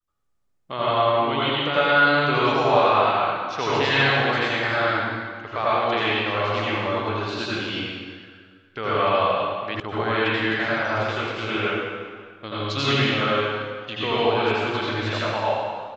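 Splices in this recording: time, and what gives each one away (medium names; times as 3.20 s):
9.80 s: sound stops dead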